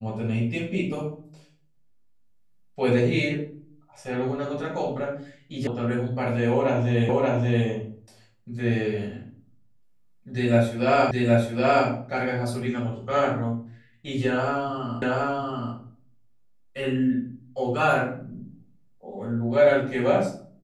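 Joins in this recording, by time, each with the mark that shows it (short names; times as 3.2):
5.67 sound cut off
7.09 repeat of the last 0.58 s
11.11 repeat of the last 0.77 s
15.02 repeat of the last 0.73 s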